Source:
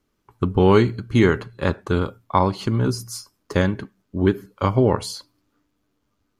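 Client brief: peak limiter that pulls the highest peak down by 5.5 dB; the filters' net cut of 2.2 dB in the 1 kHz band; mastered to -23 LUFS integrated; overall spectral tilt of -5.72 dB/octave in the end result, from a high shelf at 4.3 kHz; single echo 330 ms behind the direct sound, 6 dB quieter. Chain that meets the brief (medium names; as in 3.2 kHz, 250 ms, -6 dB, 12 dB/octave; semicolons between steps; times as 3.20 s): peaking EQ 1 kHz -3 dB; treble shelf 4.3 kHz +7 dB; peak limiter -8.5 dBFS; delay 330 ms -6 dB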